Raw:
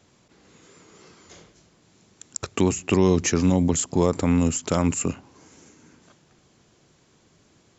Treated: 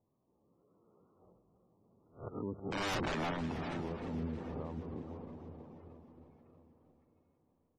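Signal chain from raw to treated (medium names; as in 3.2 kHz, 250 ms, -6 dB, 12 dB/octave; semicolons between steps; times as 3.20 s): reverse spectral sustain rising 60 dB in 0.32 s; Doppler pass-by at 3.00 s, 23 m/s, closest 1.2 m; hard clipper -19 dBFS, distortion -14 dB; on a send: feedback delay 639 ms, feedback 50%, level -23 dB; on the sum: dynamic bell 230 Hz, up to +4 dB, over -44 dBFS, Q 3.2; steep low-pass 1.2 kHz 36 dB/octave; integer overflow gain 28.5 dB; echo that smears into a reverb 458 ms, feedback 42%, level -13.5 dB; compression 2:1, threshold -58 dBFS, peak gain reduction 14 dB; peak limiter -45 dBFS, peak gain reduction 6 dB; spectral gate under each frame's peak -20 dB strong; modulated delay 314 ms, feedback 62%, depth 70 cents, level -13 dB; trim +15.5 dB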